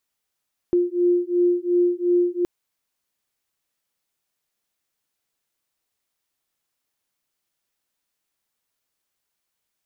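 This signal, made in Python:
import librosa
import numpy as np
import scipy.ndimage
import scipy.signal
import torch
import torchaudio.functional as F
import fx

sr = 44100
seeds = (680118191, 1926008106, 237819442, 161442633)

y = fx.two_tone_beats(sr, length_s=1.72, hz=351.0, beat_hz=2.8, level_db=-20.0)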